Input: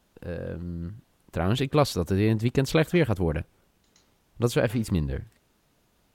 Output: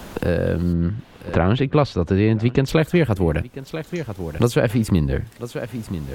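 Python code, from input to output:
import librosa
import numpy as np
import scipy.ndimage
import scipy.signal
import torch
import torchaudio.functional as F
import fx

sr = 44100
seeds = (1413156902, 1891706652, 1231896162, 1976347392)

p1 = fx.lowpass(x, sr, hz=fx.line((0.72, 2000.0), (2.67, 4000.0)), slope=12, at=(0.72, 2.67), fade=0.02)
p2 = fx.rider(p1, sr, range_db=5, speed_s=0.5)
p3 = p1 + (p2 * librosa.db_to_amplitude(1.5))
p4 = p3 + 10.0 ** (-22.0 / 20.0) * np.pad(p3, (int(989 * sr / 1000.0), 0))[:len(p3)]
y = fx.band_squash(p4, sr, depth_pct=70)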